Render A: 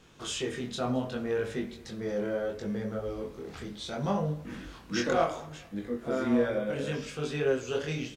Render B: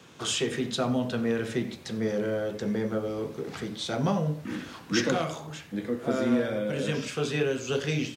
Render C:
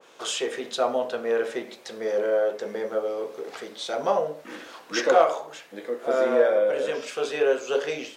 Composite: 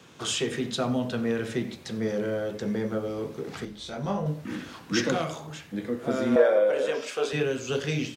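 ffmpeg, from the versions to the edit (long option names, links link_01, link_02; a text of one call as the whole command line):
ffmpeg -i take0.wav -i take1.wav -i take2.wav -filter_complex "[1:a]asplit=3[link_01][link_02][link_03];[link_01]atrim=end=3.652[link_04];[0:a]atrim=start=3.648:end=4.262[link_05];[link_02]atrim=start=4.258:end=6.362[link_06];[2:a]atrim=start=6.358:end=7.332[link_07];[link_03]atrim=start=7.328[link_08];[link_04][link_05]acrossfade=duration=0.004:curve1=hsin:curve2=hsin[link_09];[link_09][link_06]acrossfade=duration=0.004:curve1=hsin:curve2=hsin[link_10];[link_10][link_07]acrossfade=duration=0.004:curve1=hsin:curve2=hsin[link_11];[link_11][link_08]acrossfade=duration=0.004:curve1=hsin:curve2=hsin" out.wav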